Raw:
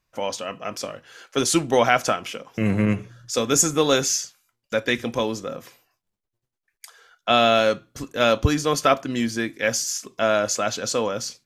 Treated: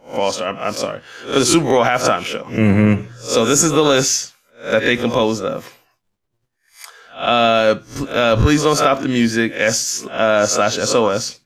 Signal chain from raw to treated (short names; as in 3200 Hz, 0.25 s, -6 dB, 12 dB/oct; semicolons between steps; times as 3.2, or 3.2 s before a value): spectral swells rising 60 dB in 0.31 s; high shelf 5200 Hz -7 dB; limiter -11.5 dBFS, peak gain reduction 9 dB; gain +8.5 dB